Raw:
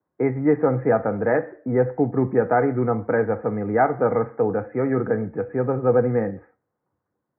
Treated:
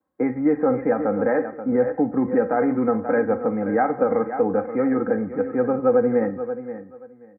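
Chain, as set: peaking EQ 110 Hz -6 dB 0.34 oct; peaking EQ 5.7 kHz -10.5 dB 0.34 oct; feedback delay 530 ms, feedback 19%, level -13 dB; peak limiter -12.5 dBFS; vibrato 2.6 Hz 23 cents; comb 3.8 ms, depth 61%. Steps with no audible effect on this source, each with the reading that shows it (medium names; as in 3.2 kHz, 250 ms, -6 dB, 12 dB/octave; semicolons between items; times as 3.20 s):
peaking EQ 5.7 kHz: input has nothing above 2 kHz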